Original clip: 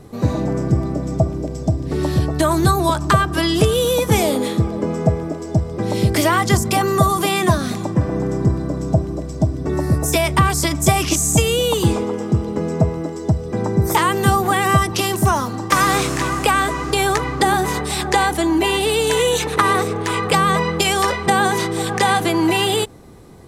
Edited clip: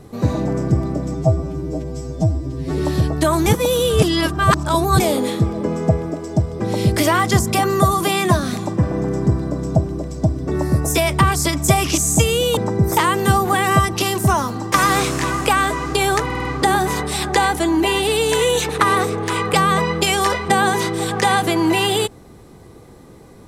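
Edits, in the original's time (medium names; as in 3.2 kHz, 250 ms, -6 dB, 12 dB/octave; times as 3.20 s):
1.14–1.96 s: stretch 2×
2.64–4.18 s: reverse
11.75–13.55 s: delete
17.23 s: stutter 0.05 s, 5 plays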